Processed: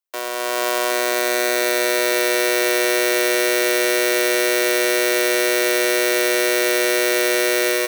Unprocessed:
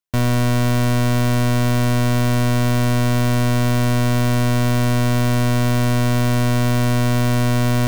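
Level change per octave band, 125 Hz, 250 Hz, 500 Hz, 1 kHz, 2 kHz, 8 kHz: below −40 dB, −6.5 dB, +7.0 dB, −1.0 dB, +8.0 dB, +8.5 dB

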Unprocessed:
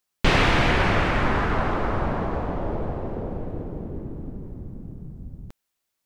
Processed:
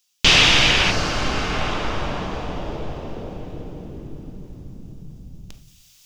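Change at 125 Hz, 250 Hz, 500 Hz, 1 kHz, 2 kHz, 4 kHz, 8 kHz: −2.0 dB, −1.5 dB, −1.5 dB, −1.0 dB, +5.0 dB, +14.0 dB, can't be measured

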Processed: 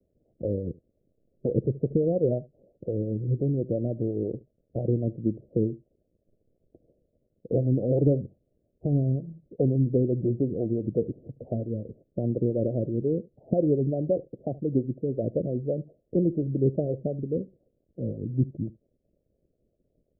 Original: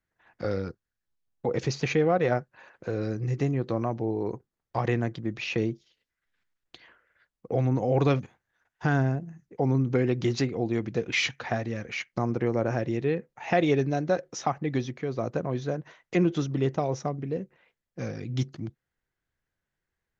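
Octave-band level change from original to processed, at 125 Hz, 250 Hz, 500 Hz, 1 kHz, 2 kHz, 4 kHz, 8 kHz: +1.5 dB, +1.5 dB, +0.5 dB, −16.0 dB, below −40 dB, below −40 dB, can't be measured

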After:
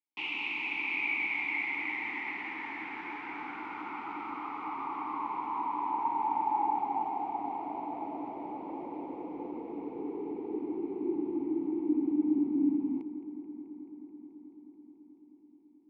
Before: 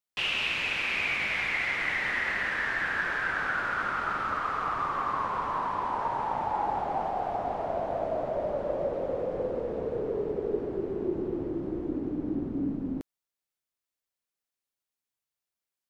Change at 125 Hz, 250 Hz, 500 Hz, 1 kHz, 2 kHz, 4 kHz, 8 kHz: −15.5 dB, +2.5 dB, −10.0 dB, −2.5 dB, −6.5 dB, below −10 dB, can't be measured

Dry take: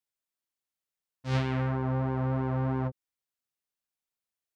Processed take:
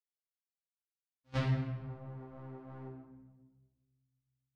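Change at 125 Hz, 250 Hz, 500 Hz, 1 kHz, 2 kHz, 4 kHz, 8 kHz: −8.5 dB, −11.0 dB, −12.0 dB, −13.5 dB, −8.5 dB, −6.0 dB, can't be measured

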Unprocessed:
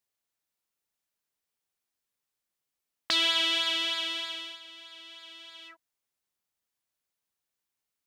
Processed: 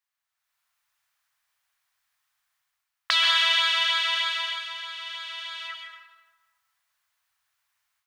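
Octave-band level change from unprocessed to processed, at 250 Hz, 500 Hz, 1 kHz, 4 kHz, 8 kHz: below −25 dB, −1.5 dB, +9.5 dB, +5.0 dB, +2.0 dB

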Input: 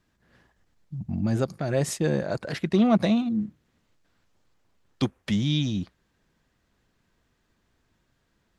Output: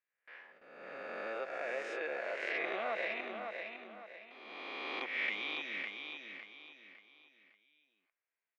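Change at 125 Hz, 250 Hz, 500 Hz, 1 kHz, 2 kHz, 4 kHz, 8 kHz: below −40 dB, −27.5 dB, −10.5 dB, −6.0 dB, +3.0 dB, −8.5 dB, below −25 dB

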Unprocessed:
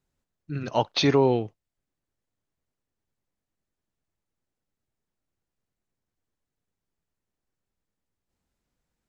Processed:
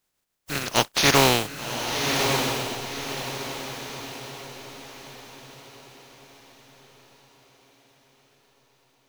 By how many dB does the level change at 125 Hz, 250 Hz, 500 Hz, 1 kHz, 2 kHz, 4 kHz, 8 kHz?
+1.5 dB, 0.0 dB, 0.0 dB, +6.5 dB, +13.5 dB, +10.0 dB, can't be measured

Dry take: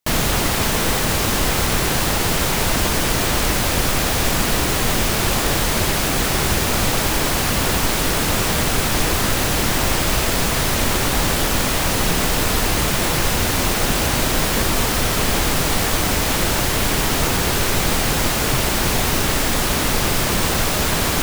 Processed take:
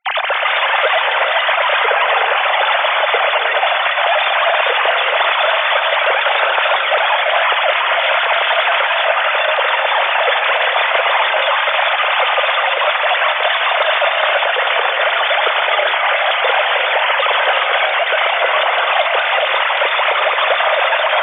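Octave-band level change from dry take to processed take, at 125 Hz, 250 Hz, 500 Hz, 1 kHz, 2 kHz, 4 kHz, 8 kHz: below −40 dB, below −25 dB, +7.0 dB, +9.5 dB, +10.0 dB, +4.5 dB, below −40 dB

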